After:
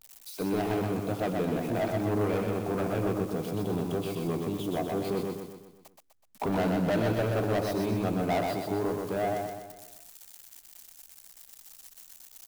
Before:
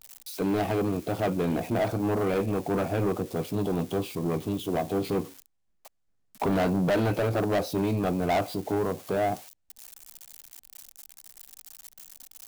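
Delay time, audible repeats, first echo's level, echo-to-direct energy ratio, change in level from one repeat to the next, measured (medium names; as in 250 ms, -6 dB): 125 ms, 6, -3.5 dB, -2.5 dB, -6.0 dB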